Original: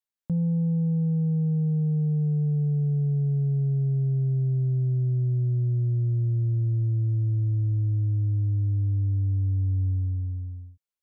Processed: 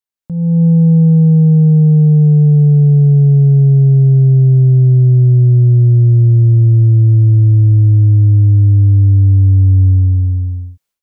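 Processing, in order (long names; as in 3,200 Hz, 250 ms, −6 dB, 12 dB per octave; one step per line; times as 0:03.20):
automatic gain control gain up to 17 dB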